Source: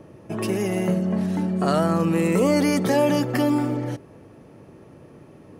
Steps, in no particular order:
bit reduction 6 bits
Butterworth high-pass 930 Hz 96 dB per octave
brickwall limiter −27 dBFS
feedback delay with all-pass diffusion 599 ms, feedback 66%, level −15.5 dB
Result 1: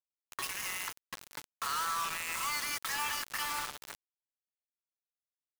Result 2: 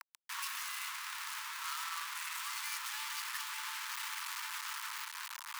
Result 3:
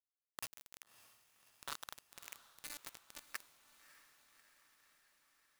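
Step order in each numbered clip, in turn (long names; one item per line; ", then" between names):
Butterworth high-pass, then brickwall limiter, then feedback delay with all-pass diffusion, then bit reduction
feedback delay with all-pass diffusion, then brickwall limiter, then bit reduction, then Butterworth high-pass
brickwall limiter, then Butterworth high-pass, then bit reduction, then feedback delay with all-pass diffusion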